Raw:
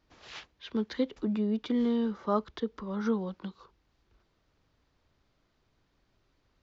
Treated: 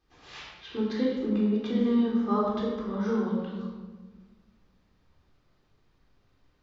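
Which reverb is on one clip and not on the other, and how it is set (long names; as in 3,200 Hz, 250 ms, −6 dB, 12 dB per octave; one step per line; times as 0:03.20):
rectangular room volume 1,000 cubic metres, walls mixed, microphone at 3.8 metres
level −5 dB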